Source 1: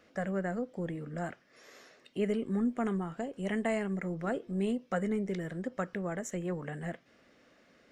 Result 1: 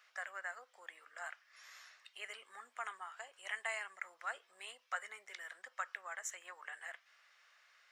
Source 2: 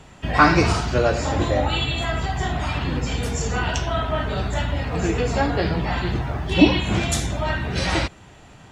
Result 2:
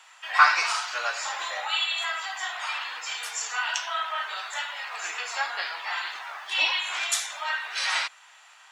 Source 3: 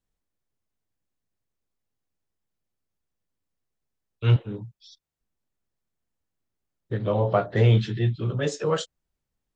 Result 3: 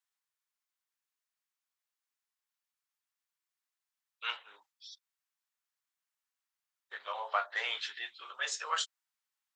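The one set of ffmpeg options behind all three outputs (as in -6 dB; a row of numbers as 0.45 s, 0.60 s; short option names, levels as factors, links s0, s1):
-af "highpass=f=1000:w=0.5412,highpass=f=1000:w=1.3066"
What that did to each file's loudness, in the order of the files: -11.0 LU, -5.0 LU, -12.5 LU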